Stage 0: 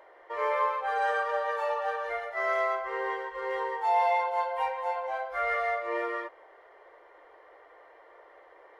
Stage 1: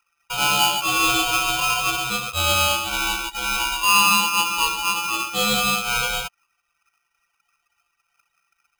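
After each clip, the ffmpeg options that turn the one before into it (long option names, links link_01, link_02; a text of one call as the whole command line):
ffmpeg -i in.wav -af "anlmdn=0.631,aeval=exprs='val(0)*sgn(sin(2*PI*1900*n/s))':channel_layout=same,volume=8.5dB" out.wav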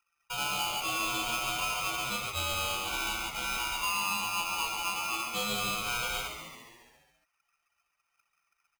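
ffmpeg -i in.wav -filter_complex "[0:a]acompressor=threshold=-21dB:ratio=6,asplit=2[link_01][link_02];[link_02]asplit=7[link_03][link_04][link_05][link_06][link_07][link_08][link_09];[link_03]adelay=138,afreqshift=-96,volume=-8dB[link_10];[link_04]adelay=276,afreqshift=-192,volume=-12.7dB[link_11];[link_05]adelay=414,afreqshift=-288,volume=-17.5dB[link_12];[link_06]adelay=552,afreqshift=-384,volume=-22.2dB[link_13];[link_07]adelay=690,afreqshift=-480,volume=-26.9dB[link_14];[link_08]adelay=828,afreqshift=-576,volume=-31.7dB[link_15];[link_09]adelay=966,afreqshift=-672,volume=-36.4dB[link_16];[link_10][link_11][link_12][link_13][link_14][link_15][link_16]amix=inputs=7:normalize=0[link_17];[link_01][link_17]amix=inputs=2:normalize=0,volume=-8.5dB" out.wav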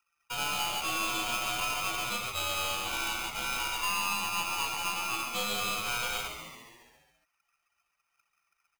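ffmpeg -i in.wav -filter_complex "[0:a]acrossover=split=270|4400[link_01][link_02][link_03];[link_01]alimiter=level_in=20dB:limit=-24dB:level=0:latency=1,volume=-20dB[link_04];[link_04][link_02][link_03]amix=inputs=3:normalize=0,aeval=exprs='0.112*(cos(1*acos(clip(val(0)/0.112,-1,1)))-cos(1*PI/2))+0.00794*(cos(6*acos(clip(val(0)/0.112,-1,1)))-cos(6*PI/2))':channel_layout=same" out.wav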